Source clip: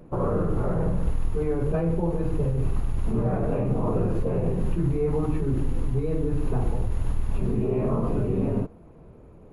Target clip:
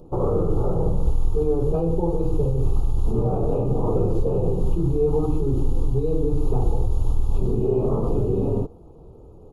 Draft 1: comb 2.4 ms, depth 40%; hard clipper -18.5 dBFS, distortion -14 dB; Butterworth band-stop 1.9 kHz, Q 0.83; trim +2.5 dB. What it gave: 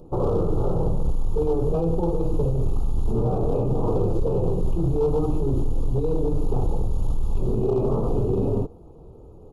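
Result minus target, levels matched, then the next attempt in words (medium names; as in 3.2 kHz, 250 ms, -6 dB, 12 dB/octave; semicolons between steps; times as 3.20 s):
hard clipper: distortion +37 dB
comb 2.4 ms, depth 40%; hard clipper -12.5 dBFS, distortion -51 dB; Butterworth band-stop 1.9 kHz, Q 0.83; trim +2.5 dB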